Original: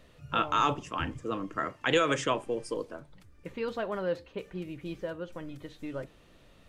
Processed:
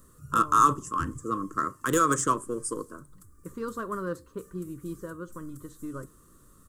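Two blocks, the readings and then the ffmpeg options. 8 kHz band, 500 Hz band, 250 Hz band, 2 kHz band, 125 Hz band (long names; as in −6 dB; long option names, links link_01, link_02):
+12.5 dB, −2.0 dB, +3.0 dB, −2.0 dB, +3.0 dB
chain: -af "aeval=exprs='0.224*(cos(1*acos(clip(val(0)/0.224,-1,1)))-cos(1*PI/2))+0.00891*(cos(7*acos(clip(val(0)/0.224,-1,1)))-cos(7*PI/2))':channel_layout=same,firequalizer=gain_entry='entry(380,0);entry(780,-22);entry(1100,7);entry(2300,-21);entry(7800,14)':delay=0.05:min_phase=1,volume=4.5dB"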